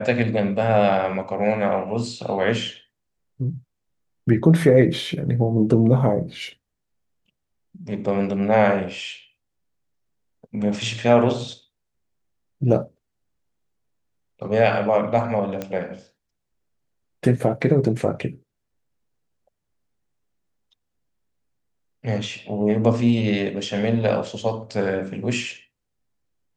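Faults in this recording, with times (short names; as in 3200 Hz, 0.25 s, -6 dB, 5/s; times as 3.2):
15.62 pop -14 dBFS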